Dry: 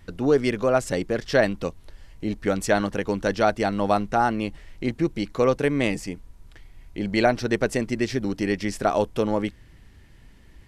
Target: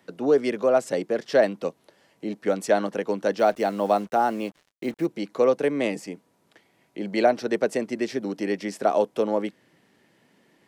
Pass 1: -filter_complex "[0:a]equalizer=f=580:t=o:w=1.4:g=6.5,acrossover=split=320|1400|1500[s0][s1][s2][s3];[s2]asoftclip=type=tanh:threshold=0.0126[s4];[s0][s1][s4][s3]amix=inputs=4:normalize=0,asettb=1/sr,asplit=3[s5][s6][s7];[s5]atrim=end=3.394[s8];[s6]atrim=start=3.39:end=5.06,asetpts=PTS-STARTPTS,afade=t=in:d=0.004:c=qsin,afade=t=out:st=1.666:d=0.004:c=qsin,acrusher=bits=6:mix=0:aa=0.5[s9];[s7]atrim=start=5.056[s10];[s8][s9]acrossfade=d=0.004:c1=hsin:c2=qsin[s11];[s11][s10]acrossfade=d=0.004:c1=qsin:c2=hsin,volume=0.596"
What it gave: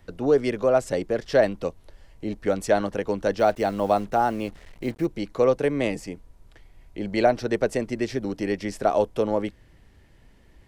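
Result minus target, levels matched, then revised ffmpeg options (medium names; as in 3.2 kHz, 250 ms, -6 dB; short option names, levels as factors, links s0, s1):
125 Hz band +6.0 dB
-filter_complex "[0:a]highpass=f=170:w=0.5412,highpass=f=170:w=1.3066,equalizer=f=580:t=o:w=1.4:g=6.5,acrossover=split=320|1400|1500[s0][s1][s2][s3];[s2]asoftclip=type=tanh:threshold=0.0126[s4];[s0][s1][s4][s3]amix=inputs=4:normalize=0,asettb=1/sr,asplit=3[s5][s6][s7];[s5]atrim=end=3.394[s8];[s6]atrim=start=3.39:end=5.06,asetpts=PTS-STARTPTS,afade=t=in:d=0.004:c=qsin,afade=t=out:st=1.666:d=0.004:c=qsin,acrusher=bits=6:mix=0:aa=0.5[s9];[s7]atrim=start=5.056[s10];[s8][s9]acrossfade=d=0.004:c1=hsin:c2=qsin[s11];[s11][s10]acrossfade=d=0.004:c1=qsin:c2=hsin,volume=0.596"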